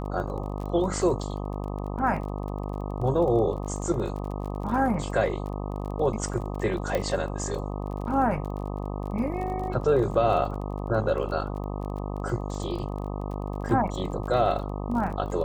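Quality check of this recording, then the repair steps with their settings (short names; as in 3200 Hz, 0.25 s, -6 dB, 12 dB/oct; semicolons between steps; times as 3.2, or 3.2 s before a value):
buzz 50 Hz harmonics 25 -32 dBFS
crackle 26/s -35 dBFS
6.95 pop -14 dBFS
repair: de-click; de-hum 50 Hz, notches 25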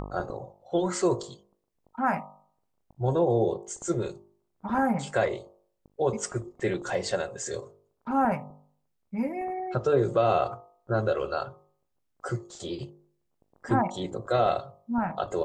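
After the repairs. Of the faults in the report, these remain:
6.95 pop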